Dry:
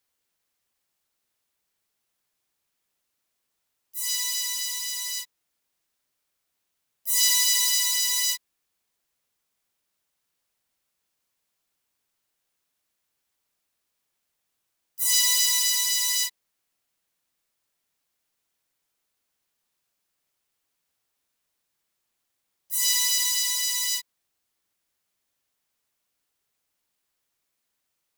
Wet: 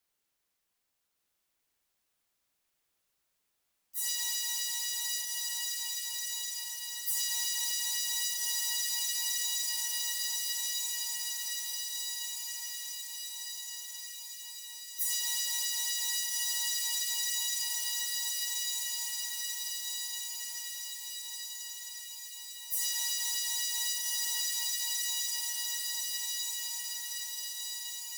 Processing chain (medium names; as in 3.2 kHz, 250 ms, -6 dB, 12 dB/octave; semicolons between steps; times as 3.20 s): echo that smears into a reverb 1294 ms, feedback 66%, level -4 dB; frequency shift -63 Hz; compression 10:1, threshold -26 dBFS, peak gain reduction 11 dB; trim -2.5 dB